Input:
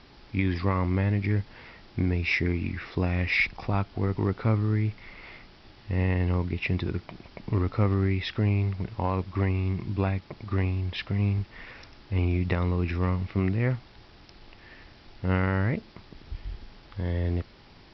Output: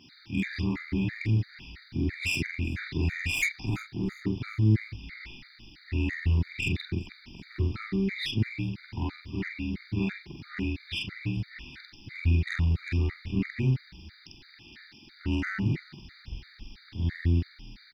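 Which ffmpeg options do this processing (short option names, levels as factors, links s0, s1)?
-filter_complex "[0:a]afftfilt=real='re':imag='-im':win_size=4096:overlap=0.75,adynamicequalizer=threshold=0.002:dfrequency=1300:dqfactor=2.9:tfrequency=1300:tqfactor=2.9:attack=5:release=100:ratio=0.375:range=2.5:mode=cutabove:tftype=bell,acrossover=split=100|1200[s0][s1][s2];[s0]aeval=exprs='sgn(val(0))*max(abs(val(0))-0.00178,0)':c=same[s3];[s1]asuperstop=centerf=640:order=8:qfactor=0.85[s4];[s2]asoftclip=type=tanh:threshold=0.0316[s5];[s3][s4][s5]amix=inputs=3:normalize=0,crystalizer=i=5.5:c=0,highshelf=f=3200:g=-9,asplit=2[s6][s7];[s7]asplit=3[s8][s9][s10];[s8]adelay=382,afreqshift=-52,volume=0.075[s11];[s9]adelay=764,afreqshift=-104,volume=0.0351[s12];[s10]adelay=1146,afreqshift=-156,volume=0.0166[s13];[s11][s12][s13]amix=inputs=3:normalize=0[s14];[s6][s14]amix=inputs=2:normalize=0,afftfilt=real='re*gt(sin(2*PI*3*pts/sr)*(1-2*mod(floor(b*sr/1024/1200),2)),0)':imag='im*gt(sin(2*PI*3*pts/sr)*(1-2*mod(floor(b*sr/1024/1200),2)),0)':win_size=1024:overlap=0.75,volume=2"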